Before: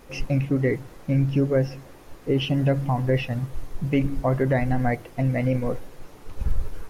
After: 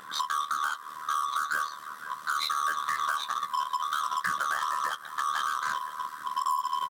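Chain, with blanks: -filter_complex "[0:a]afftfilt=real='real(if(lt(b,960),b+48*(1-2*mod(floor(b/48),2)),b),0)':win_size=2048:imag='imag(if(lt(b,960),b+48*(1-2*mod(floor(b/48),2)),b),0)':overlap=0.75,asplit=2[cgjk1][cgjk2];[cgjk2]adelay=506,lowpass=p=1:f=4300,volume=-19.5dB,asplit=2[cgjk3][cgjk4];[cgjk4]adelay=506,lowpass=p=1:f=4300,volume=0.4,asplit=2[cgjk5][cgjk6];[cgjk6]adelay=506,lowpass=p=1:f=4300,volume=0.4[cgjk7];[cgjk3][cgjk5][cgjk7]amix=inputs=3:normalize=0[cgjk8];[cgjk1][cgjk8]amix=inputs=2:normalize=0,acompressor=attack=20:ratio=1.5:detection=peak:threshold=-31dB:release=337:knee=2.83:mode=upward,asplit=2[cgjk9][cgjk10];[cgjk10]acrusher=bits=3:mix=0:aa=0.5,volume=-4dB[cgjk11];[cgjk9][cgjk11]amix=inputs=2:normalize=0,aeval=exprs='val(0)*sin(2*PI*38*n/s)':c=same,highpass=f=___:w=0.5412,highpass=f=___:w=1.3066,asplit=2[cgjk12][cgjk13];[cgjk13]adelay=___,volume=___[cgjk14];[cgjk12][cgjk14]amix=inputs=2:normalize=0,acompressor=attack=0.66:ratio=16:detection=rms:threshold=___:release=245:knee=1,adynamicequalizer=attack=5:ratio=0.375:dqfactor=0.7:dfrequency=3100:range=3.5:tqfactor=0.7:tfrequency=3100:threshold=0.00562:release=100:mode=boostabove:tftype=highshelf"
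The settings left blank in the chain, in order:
140, 140, 16, -12dB, -22dB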